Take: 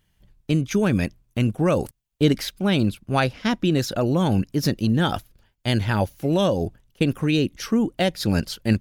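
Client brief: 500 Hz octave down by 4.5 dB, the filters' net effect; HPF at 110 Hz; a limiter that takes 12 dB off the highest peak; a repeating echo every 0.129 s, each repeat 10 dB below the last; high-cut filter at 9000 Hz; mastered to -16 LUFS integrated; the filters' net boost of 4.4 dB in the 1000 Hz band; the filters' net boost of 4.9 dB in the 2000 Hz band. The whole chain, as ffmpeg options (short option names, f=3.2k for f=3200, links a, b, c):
-af "highpass=110,lowpass=9k,equalizer=f=500:t=o:g=-8,equalizer=f=1k:t=o:g=7.5,equalizer=f=2k:t=o:g=4.5,alimiter=limit=-16dB:level=0:latency=1,aecho=1:1:129|258|387|516:0.316|0.101|0.0324|0.0104,volume=10.5dB"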